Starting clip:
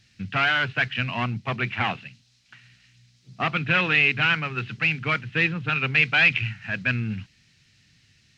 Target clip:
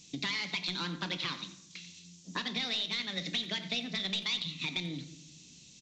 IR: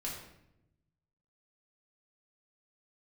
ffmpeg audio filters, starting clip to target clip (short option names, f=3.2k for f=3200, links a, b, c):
-filter_complex "[0:a]acompressor=threshold=-34dB:ratio=12,asetrate=63504,aresample=44100,bass=f=250:g=-1,treble=f=4k:g=13,aresample=16000,aeval=exprs='clip(val(0),-1,0.0562)':c=same,aresample=44100,asplit=2[a][b];[b]adelay=90,highpass=300,lowpass=3.4k,asoftclip=type=hard:threshold=-28dB,volume=-14dB[c];[a][c]amix=inputs=2:normalize=0,asplit=2[d][e];[1:a]atrim=start_sample=2205,lowpass=5.3k[f];[e][f]afir=irnorm=-1:irlink=0,volume=-7dB[g];[d][g]amix=inputs=2:normalize=0,volume=-2dB"